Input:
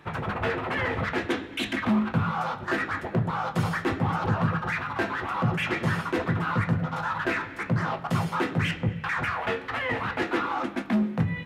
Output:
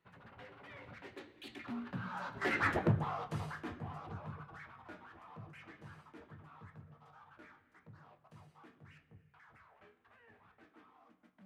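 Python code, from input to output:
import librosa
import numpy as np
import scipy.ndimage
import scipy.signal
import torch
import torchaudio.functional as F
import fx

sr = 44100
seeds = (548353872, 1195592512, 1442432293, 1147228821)

y = fx.doppler_pass(x, sr, speed_mps=34, closest_m=4.1, pass_at_s=2.72)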